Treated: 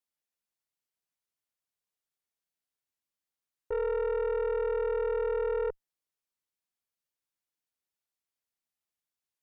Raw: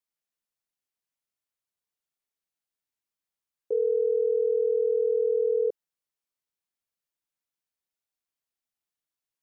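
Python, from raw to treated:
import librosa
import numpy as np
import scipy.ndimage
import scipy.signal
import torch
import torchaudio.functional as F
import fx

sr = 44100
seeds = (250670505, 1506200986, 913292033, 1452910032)

y = fx.tube_stage(x, sr, drive_db=26.0, bias=0.45)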